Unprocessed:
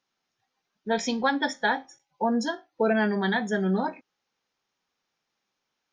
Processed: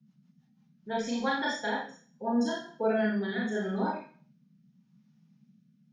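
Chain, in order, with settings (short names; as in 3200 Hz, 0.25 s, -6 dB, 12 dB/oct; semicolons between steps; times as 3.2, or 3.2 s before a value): Schroeder reverb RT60 0.48 s, combs from 26 ms, DRR -4 dB; rotary speaker horn 6.3 Hz, later 0.8 Hz, at 0.34; band noise 140–230 Hz -55 dBFS; gain -8 dB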